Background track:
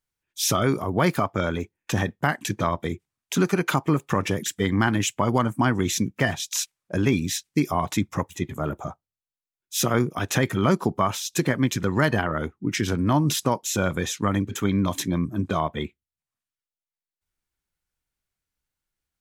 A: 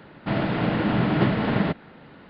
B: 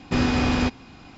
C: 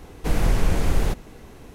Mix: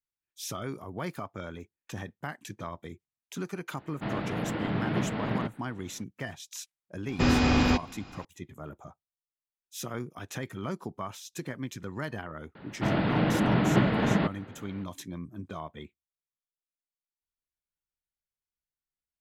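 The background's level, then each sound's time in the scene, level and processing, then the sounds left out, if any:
background track -14.5 dB
3.75 add A -8.5 dB + Doppler distortion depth 0.28 ms
7.08 add B -1.5 dB
12.55 add A -2.5 dB
not used: C

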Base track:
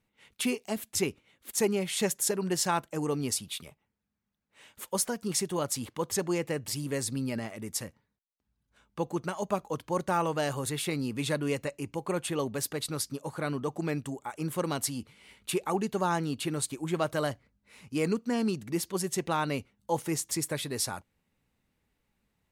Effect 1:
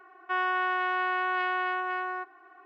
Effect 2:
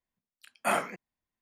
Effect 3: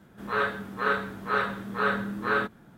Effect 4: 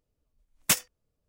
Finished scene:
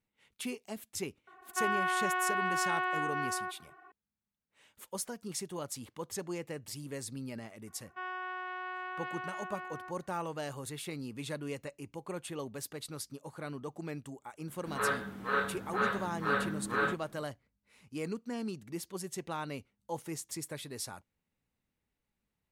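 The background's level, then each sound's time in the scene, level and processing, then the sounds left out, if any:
base track -9 dB
1.27 add 1 -3.5 dB
7.67 add 1 -12 dB
14.47 add 3 -5 dB
not used: 2, 4

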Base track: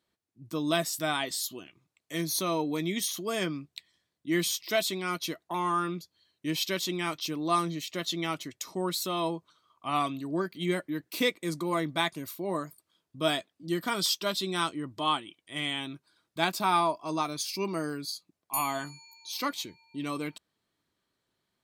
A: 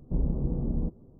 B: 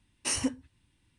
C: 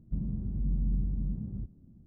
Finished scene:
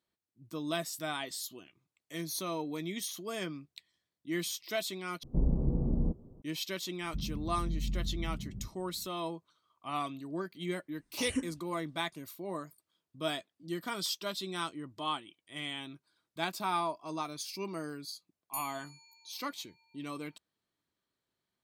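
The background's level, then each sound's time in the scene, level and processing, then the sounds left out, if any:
base track -7 dB
5.23 replace with A -1 dB
7.02 add C -5 dB
10.92 add B -3 dB + endless phaser -2.5 Hz

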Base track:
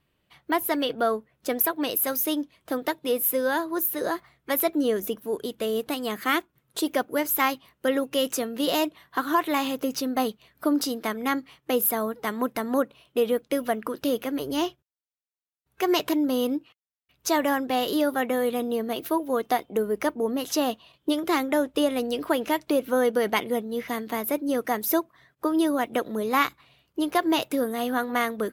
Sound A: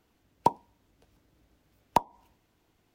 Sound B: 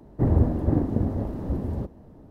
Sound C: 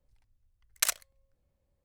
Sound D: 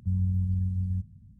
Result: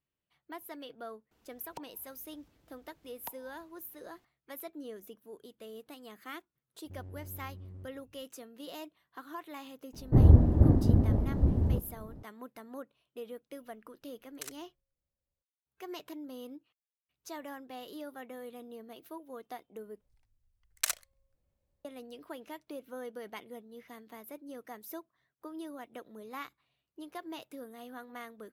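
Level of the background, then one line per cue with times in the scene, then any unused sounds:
base track -20 dB
1.31 add A -1 dB + compressor 2.5:1, threshold -50 dBFS
6.84 add D -14 dB + overloaded stage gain 30.5 dB
9.93 add B -5 dB + low shelf 180 Hz +9.5 dB
13.59 add C -16.5 dB
20.01 replace with C -4 dB

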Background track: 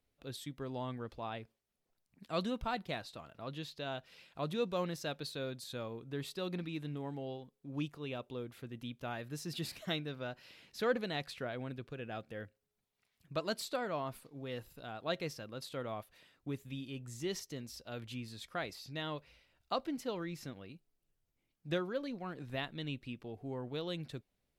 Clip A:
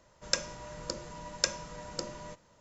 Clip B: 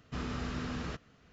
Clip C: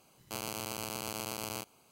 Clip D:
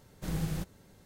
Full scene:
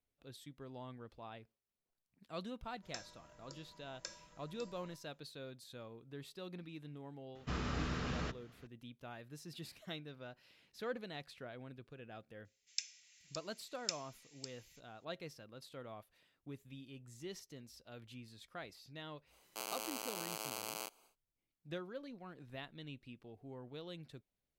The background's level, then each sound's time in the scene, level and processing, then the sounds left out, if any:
background track -9 dB
2.61 add A -6.5 dB + resonator 330 Hz, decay 0.6 s, mix 80%
7.35 add B -0.5 dB + notches 50/100/150/200/250/300/350/400/450 Hz
12.45 add A -9.5 dB + elliptic high-pass 2200 Hz, stop band 70 dB
19.25 add C -4 dB, fades 0.10 s + HPF 400 Hz
not used: D

